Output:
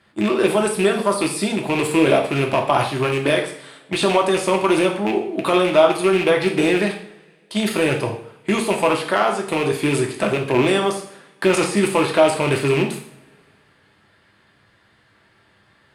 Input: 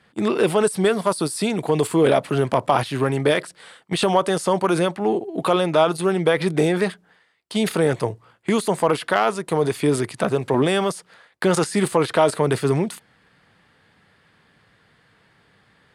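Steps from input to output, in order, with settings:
loose part that buzzes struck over −23 dBFS, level −15 dBFS
coupled-rooms reverb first 0.56 s, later 2.2 s, from −24 dB, DRR 1 dB
level −1 dB

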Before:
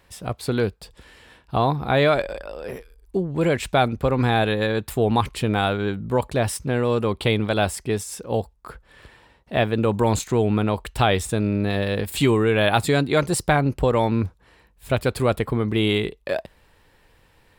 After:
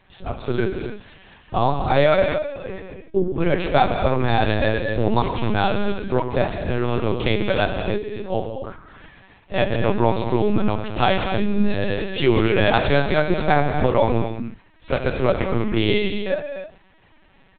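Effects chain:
comb filter 5.3 ms, depth 79%
reverb whose tail is shaped and stops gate 330 ms flat, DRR 3.5 dB
linear-prediction vocoder at 8 kHz pitch kept
level −1 dB

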